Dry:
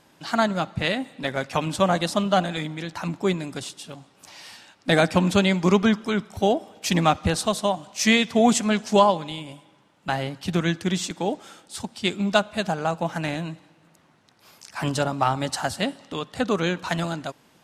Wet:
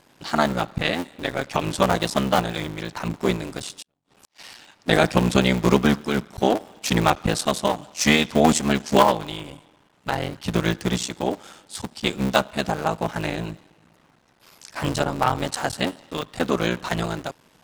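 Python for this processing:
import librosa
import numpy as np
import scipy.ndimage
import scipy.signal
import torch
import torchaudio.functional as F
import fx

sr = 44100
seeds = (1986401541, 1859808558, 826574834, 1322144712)

y = fx.cycle_switch(x, sr, every=3, mode='muted')
y = fx.gate_flip(y, sr, shuts_db=-33.0, range_db=-38, at=(3.82, 4.45))
y = y * librosa.db_to_amplitude(2.5)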